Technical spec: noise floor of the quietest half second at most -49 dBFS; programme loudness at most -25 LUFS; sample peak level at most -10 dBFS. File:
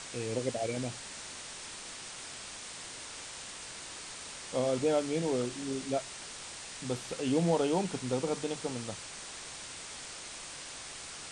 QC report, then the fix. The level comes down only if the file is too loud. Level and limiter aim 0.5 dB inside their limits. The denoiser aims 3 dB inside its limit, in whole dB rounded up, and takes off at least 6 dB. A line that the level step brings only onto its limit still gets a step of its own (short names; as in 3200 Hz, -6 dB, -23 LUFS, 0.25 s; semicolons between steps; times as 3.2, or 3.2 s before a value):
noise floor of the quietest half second -45 dBFS: fail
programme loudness -35.5 LUFS: OK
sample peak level -15.5 dBFS: OK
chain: denoiser 7 dB, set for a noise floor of -45 dBFS